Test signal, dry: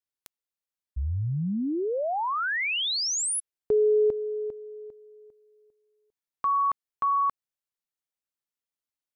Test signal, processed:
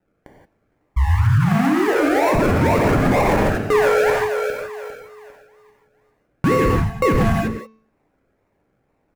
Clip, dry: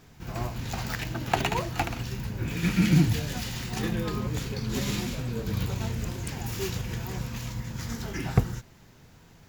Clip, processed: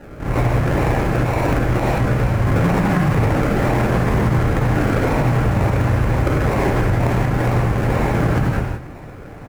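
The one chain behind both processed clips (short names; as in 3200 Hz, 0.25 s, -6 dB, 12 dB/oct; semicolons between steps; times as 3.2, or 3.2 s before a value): in parallel at -3.5 dB: soft clip -21.5 dBFS; on the sum: passive tone stack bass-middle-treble 5-5-5; on a send: echo 0.18 s -18 dB; on the sum: decimation with a swept rate 38×, swing 60% 2.1 Hz; resonant high shelf 2600 Hz -8 dB, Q 1.5; de-hum 220.8 Hz, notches 30; compressor 3:1, threshold -37 dBFS; non-linear reverb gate 0.2 s flat, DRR -1.5 dB; maximiser +31 dB; Doppler distortion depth 0.14 ms; gain -7.5 dB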